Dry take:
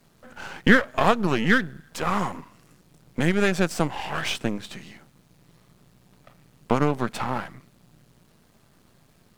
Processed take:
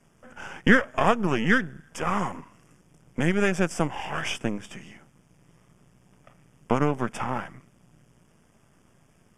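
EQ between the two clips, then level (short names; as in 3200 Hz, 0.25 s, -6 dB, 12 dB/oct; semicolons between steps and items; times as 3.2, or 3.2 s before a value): Butterworth band-stop 4100 Hz, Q 2.4; LPF 11000 Hz 24 dB/oct; -1.5 dB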